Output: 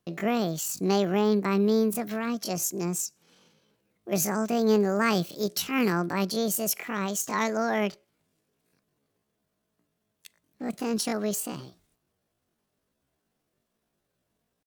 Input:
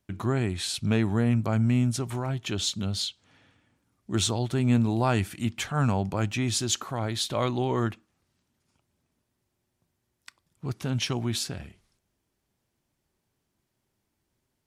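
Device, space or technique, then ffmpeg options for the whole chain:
chipmunk voice: -filter_complex "[0:a]asetrate=78577,aresample=44100,atempo=0.561231,asettb=1/sr,asplit=3[s0][s1][s2];[s0]atrim=end=5.424[s3];[s1]atrim=start=5.42:end=5.93,asetpts=PTS-STARTPTS,afade=t=in:d=0.004:c=qsin,afade=t=out:st=0.506:d=0.004:c=qsin,bass=f=250:g=-1,treble=f=4000:g=5[s4];[s2]atrim=start=5.926[s5];[s3][s4]acrossfade=d=0.004:c1=hsin:c2=qsin[s6];[s6][s5]acrossfade=d=0.004:c1=qsin:c2=hsin"

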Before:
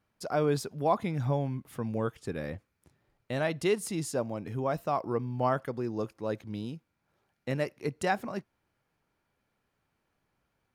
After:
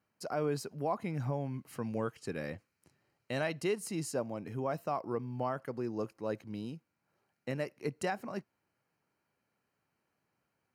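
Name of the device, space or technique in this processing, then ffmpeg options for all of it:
PA system with an anti-feedback notch: -filter_complex "[0:a]highpass=110,asuperstop=centerf=3500:order=4:qfactor=6.5,alimiter=limit=0.1:level=0:latency=1:release=232,asettb=1/sr,asplit=3[s0][s1][s2];[s0]atrim=end=1.544[s3];[s1]atrim=start=1.54:end=3.6,asetpts=PTS-STARTPTS,afade=t=in:d=0.004:c=qsin,afade=t=out:st=2.056:d=0.004:c=qsin,equalizer=f=4600:t=o:w=2.5:g=5[s4];[s2]atrim=start=3.596[s5];[s3][s4]acrossfade=d=0.004:c1=hsin:c2=qsin[s6];[s6][s5]acrossfade=d=0.004:c1=qsin:c2=hsin,volume=0.708"

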